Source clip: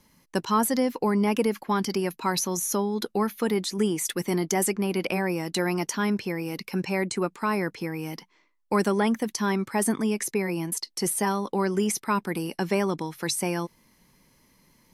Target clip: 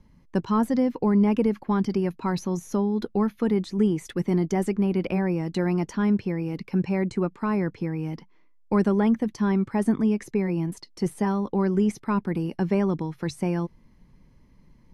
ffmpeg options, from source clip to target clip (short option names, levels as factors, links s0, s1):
-af "aemphasis=mode=reproduction:type=riaa,volume=0.668"